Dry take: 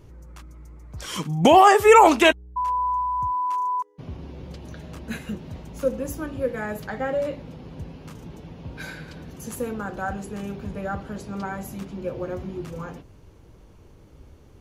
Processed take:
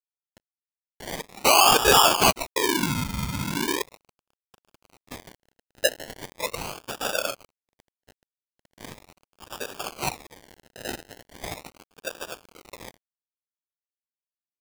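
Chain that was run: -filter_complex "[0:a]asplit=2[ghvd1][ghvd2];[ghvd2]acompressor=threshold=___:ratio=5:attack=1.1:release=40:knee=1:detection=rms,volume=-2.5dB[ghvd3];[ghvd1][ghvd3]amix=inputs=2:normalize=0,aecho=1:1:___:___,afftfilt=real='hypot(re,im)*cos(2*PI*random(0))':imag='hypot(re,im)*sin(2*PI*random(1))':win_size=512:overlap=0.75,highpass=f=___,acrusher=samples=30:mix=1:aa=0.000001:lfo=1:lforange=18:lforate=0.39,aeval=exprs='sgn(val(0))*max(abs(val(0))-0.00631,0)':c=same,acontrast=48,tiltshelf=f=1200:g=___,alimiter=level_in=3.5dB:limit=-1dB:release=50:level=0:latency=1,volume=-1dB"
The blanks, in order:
-36dB, 153, 0.168, 540, -5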